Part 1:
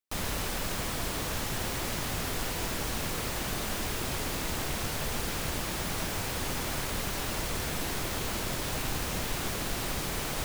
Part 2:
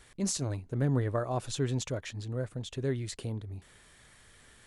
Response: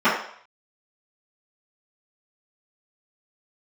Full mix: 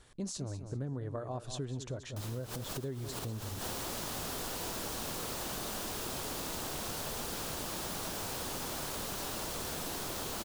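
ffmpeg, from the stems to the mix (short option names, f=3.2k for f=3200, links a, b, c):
-filter_complex "[0:a]lowshelf=f=150:g=-10,adelay=2050,volume=0.5dB[a];[1:a]highshelf=f=9.6k:g=-9.5,volume=-1dB,asplit=3[b][c][d];[c]volume=-13dB[e];[d]apad=whole_len=550819[f];[a][f]sidechaincompress=threshold=-47dB:ratio=16:attack=8.5:release=105[g];[e]aecho=0:1:196|392|588|784:1|0.3|0.09|0.027[h];[g][b][h]amix=inputs=3:normalize=0,equalizer=f=2.1k:t=o:w=0.84:g=-7.5,acompressor=threshold=-35dB:ratio=6"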